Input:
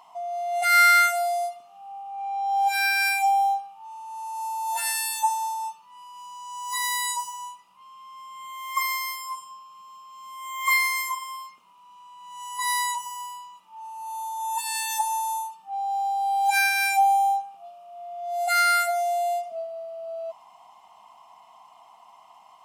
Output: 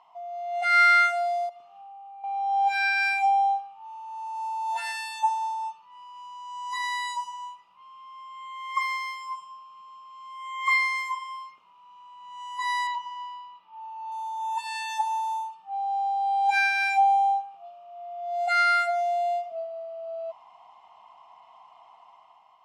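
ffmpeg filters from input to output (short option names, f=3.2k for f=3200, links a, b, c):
-filter_complex "[0:a]asettb=1/sr,asplit=3[a][b][c];[a]atrim=end=1.494[d];[b]atrim=start=1.49:end=2.24,asetpts=PTS-STARTPTS,afade=t=in:d=0.004:c=qsin,afade=t=out:st=0.746:d=0.004:c=qsin,acompressor=threshold=-42dB:ratio=6:attack=3.2:release=140:knee=1:detection=peak[e];[c]atrim=start=2.236[f];[d][e]acrossfade=d=0.004:c1=hsin:c2=qsin[g];[g][f]acrossfade=d=0.004:c1=qsin:c2=hsin,asettb=1/sr,asplit=3[h][i][j];[h]atrim=end=12.874[k];[i]atrim=start=12.87:end=14.12,asetpts=PTS-STARTPTS,afade=t=in:d=0.004:c=qsin,afade=t=out:st=1.246:d=0.004:c=qsin,lowpass=f=4.9k:w=0.5412,lowpass=f=4.9k:w=1.3066[l];[j]atrim=start=14.116[m];[k][l]acrossfade=d=0.004:c1=hsin:c2=qsin[n];[n][m]acrossfade=d=0.004:c1=qsin:c2=hsin,lowpass=3.6k,equalizer=f=220:t=o:w=0.93:g=-6.5,dynaudnorm=f=100:g=11:m=5dB,volume=-5.5dB"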